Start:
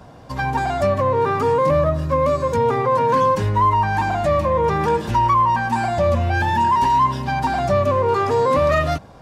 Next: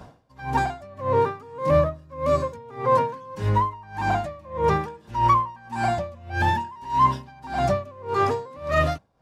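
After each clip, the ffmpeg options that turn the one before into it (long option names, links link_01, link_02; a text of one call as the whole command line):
ffmpeg -i in.wav -af "aeval=exprs='val(0)*pow(10,-26*(0.5-0.5*cos(2*PI*1.7*n/s))/20)':channel_layout=same" out.wav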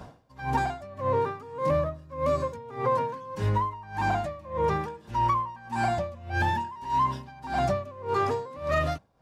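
ffmpeg -i in.wav -af "acompressor=threshold=-22dB:ratio=5" out.wav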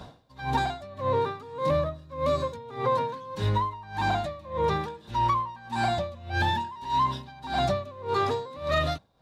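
ffmpeg -i in.wav -af "equalizer=frequency=3800:width_type=o:width=0.34:gain=13.5" out.wav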